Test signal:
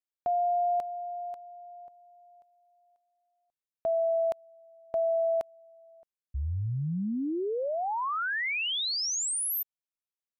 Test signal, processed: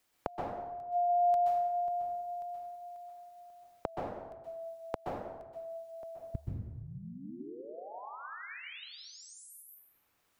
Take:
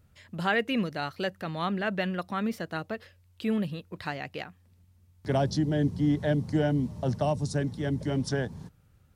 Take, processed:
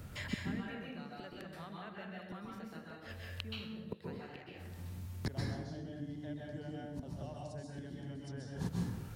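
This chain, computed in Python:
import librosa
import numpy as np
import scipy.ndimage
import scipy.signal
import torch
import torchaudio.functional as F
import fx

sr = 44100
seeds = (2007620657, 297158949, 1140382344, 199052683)

y = fx.gate_flip(x, sr, shuts_db=-31.0, range_db=-33)
y = fx.rev_plate(y, sr, seeds[0], rt60_s=0.94, hf_ratio=0.7, predelay_ms=115, drr_db=-3.0)
y = fx.band_squash(y, sr, depth_pct=40)
y = y * librosa.db_to_amplitude(10.0)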